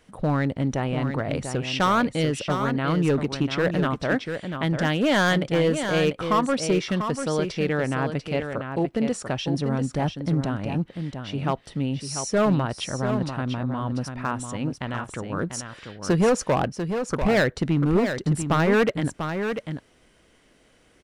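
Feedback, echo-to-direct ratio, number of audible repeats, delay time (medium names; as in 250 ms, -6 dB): no regular repeats, -7.5 dB, 1, 693 ms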